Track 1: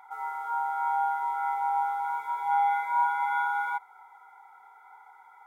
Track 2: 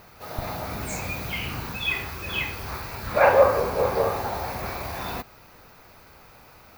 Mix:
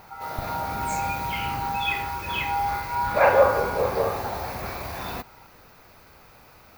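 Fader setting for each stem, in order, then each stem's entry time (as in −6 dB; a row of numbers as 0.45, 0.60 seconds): −1.5, −1.0 decibels; 0.00, 0.00 seconds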